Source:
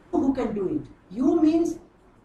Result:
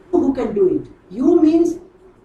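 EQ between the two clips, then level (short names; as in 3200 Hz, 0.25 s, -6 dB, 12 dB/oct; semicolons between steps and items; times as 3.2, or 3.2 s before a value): bell 380 Hz +12 dB 0.25 oct; +4.0 dB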